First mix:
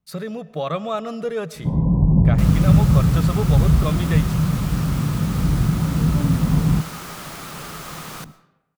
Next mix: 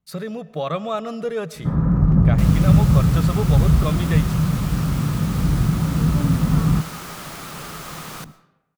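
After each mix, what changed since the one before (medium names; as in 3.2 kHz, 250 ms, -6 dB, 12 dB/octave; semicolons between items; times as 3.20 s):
first sound: remove brick-wall FIR low-pass 1.1 kHz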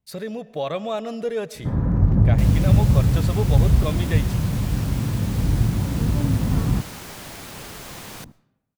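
second sound: send -10.0 dB; master: add graphic EQ with 31 bands 100 Hz +6 dB, 160 Hz -10 dB, 1.25 kHz -10 dB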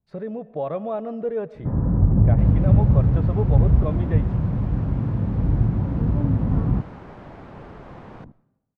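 master: add low-pass 1.1 kHz 12 dB/octave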